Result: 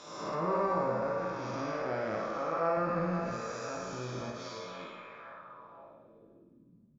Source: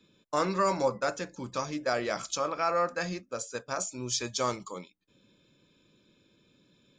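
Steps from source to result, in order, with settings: spectral blur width 405 ms; 4.30–4.80 s: feedback comb 90 Hz, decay 0.31 s, harmonics all, mix 90%; feedback echo behind a band-pass 517 ms, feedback 52%, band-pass 1.2 kHz, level -8.5 dB; low-pass sweep 6.2 kHz -> 170 Hz, 4.38–6.91 s; doubling 18 ms -4.5 dB; low-pass that closes with the level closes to 1.6 kHz, closed at -31 dBFS; 2.77–3.37 s: bass shelf 200 Hz +10.5 dB; flutter echo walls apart 9.5 m, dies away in 0.54 s; tape noise reduction on one side only encoder only

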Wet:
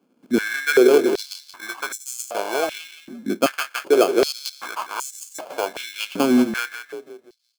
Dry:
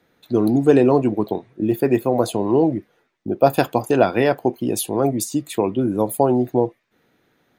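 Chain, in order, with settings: frequency-shifting echo 173 ms, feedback 43%, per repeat -30 Hz, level -9.5 dB; sample-rate reducer 1.9 kHz, jitter 0%; step-sequenced high-pass 2.6 Hz 240–7200 Hz; trim -6.5 dB

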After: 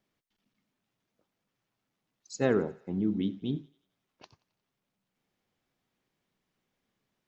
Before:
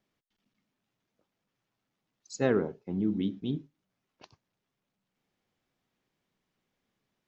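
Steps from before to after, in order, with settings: thinning echo 89 ms, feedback 56%, high-pass 430 Hz, level -21.5 dB

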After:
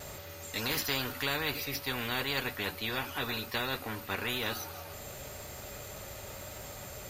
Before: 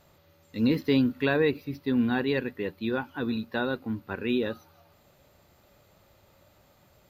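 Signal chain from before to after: graphic EQ 250/1000/4000/8000 Hz -8/-5/-4/+7 dB; vibrato 0.96 Hz 14 cents; comb of notches 170 Hz; spectrum-flattening compressor 4:1

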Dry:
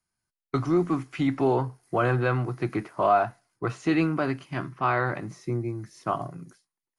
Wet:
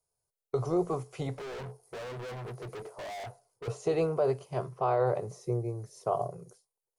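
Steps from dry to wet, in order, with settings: FFT filter 130 Hz 0 dB, 300 Hz -16 dB, 430 Hz +14 dB, 990 Hz 0 dB, 1.7 kHz -14 dB, 8 kHz +4 dB; peak limiter -16 dBFS, peak gain reduction 10 dB; 1.34–3.68 s: hard clipper -36.5 dBFS, distortion -3 dB; trim -2.5 dB

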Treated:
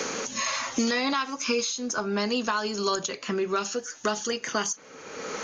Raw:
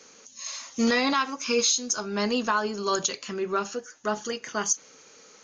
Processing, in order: three bands compressed up and down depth 100%; trim -1.5 dB

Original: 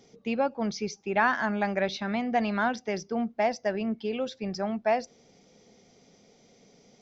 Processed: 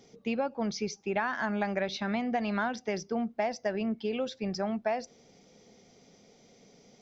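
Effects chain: compression 10:1, threshold -26 dBFS, peak gain reduction 8.5 dB

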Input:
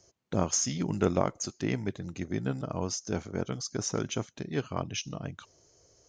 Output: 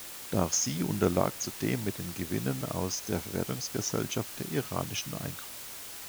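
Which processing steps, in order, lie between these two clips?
added noise white -43 dBFS

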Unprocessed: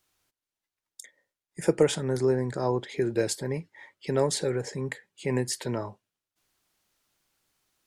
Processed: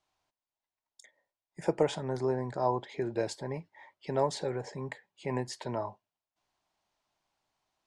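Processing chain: low-pass 5.9 kHz 12 dB/octave; high-order bell 800 Hz +9 dB 1 oct; trim -6.5 dB

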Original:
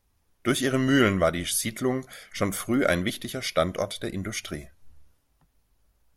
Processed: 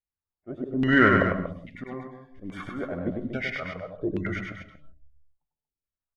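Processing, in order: spectral noise reduction 30 dB; LFO low-pass saw down 1.2 Hz 260–2700 Hz; in parallel at -10.5 dB: saturation -13 dBFS, distortion -15 dB; on the sum: slow attack 296 ms; loudspeakers at several distances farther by 34 m -4 dB, 81 m -9 dB; on a send at -13 dB: reverberation, pre-delay 94 ms; on the sum: trim -2.5 dB

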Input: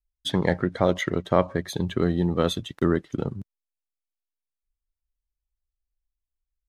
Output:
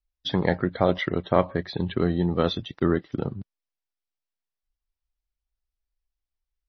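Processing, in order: peaking EQ 750 Hz +2.5 dB 0.31 oct; MP3 24 kbps 24 kHz

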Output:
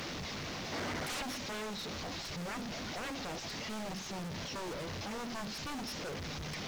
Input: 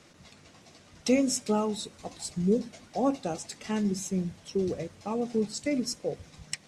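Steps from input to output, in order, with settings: one-bit delta coder 32 kbps, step -29.5 dBFS; time-frequency box 0.72–1.22 s, 230–2300 Hz +7 dB; added noise pink -53 dBFS; wavefolder -29 dBFS; trim -5 dB

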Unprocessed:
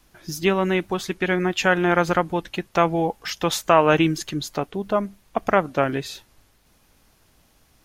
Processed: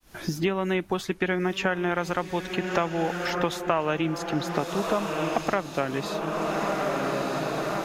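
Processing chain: fade-in on the opening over 0.89 s; echo that smears into a reverb 1276 ms, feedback 51%, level -10.5 dB; three bands compressed up and down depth 100%; trim -6 dB

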